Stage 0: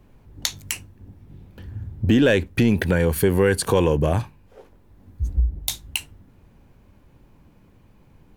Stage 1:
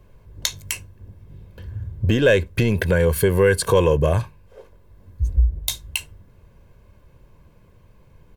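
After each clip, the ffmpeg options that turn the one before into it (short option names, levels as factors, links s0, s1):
-af "aecho=1:1:1.9:0.55"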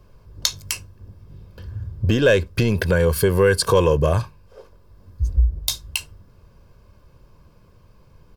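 -af "equalizer=f=1250:t=o:w=0.33:g=6,equalizer=f=2000:t=o:w=0.33:g=-5,equalizer=f=5000:t=o:w=0.33:g=10"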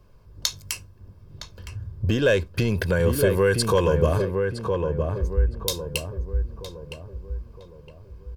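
-filter_complex "[0:a]asplit=2[s0][s1];[s1]adelay=963,lowpass=f=1300:p=1,volume=0.631,asplit=2[s2][s3];[s3]adelay=963,lowpass=f=1300:p=1,volume=0.45,asplit=2[s4][s5];[s5]adelay=963,lowpass=f=1300:p=1,volume=0.45,asplit=2[s6][s7];[s7]adelay=963,lowpass=f=1300:p=1,volume=0.45,asplit=2[s8][s9];[s9]adelay=963,lowpass=f=1300:p=1,volume=0.45,asplit=2[s10][s11];[s11]adelay=963,lowpass=f=1300:p=1,volume=0.45[s12];[s0][s2][s4][s6][s8][s10][s12]amix=inputs=7:normalize=0,volume=0.631"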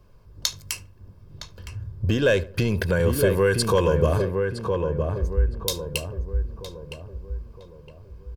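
-filter_complex "[0:a]asplit=2[s0][s1];[s1]adelay=74,lowpass=f=1600:p=1,volume=0.141,asplit=2[s2][s3];[s3]adelay=74,lowpass=f=1600:p=1,volume=0.39,asplit=2[s4][s5];[s5]adelay=74,lowpass=f=1600:p=1,volume=0.39[s6];[s0][s2][s4][s6]amix=inputs=4:normalize=0"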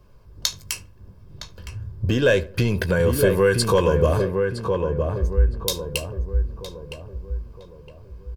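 -filter_complex "[0:a]asplit=2[s0][s1];[s1]adelay=16,volume=0.282[s2];[s0][s2]amix=inputs=2:normalize=0,volume=1.19"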